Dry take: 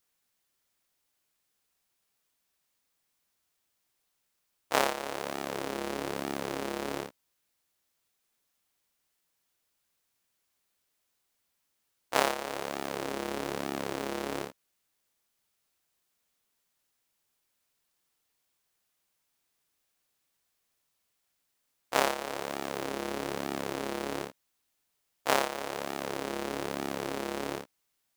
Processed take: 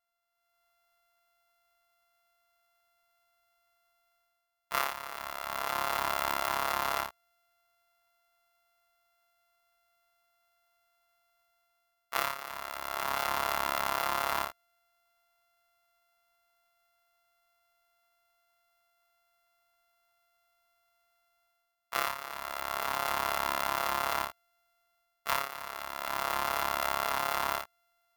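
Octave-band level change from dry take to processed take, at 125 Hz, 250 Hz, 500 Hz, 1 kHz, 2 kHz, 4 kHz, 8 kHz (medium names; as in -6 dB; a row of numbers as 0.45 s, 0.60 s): -6.0 dB, -12.5 dB, -5.5 dB, +3.5 dB, +2.0 dB, +1.0 dB, 0.0 dB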